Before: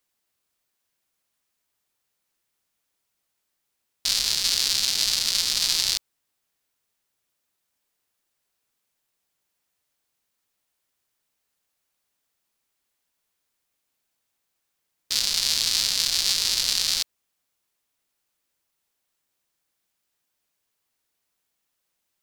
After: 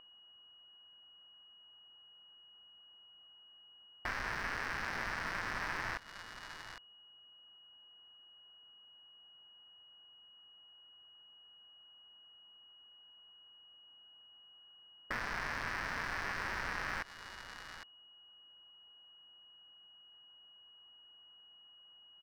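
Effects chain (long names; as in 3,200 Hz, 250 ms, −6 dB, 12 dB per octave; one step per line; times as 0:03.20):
adaptive Wiener filter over 15 samples
parametric band 1,700 Hz +15 dB 0.96 octaves
steady tone 2,900 Hz −46 dBFS
drawn EQ curve 520 Hz 0 dB, 990 Hz +4 dB, 3,300 Hz −22 dB
single-tap delay 807 ms −21.5 dB
downward compressor 6 to 1, threshold −40 dBFS, peak gain reduction 10.5 dB
slew-rate limiting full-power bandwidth 25 Hz
level +7.5 dB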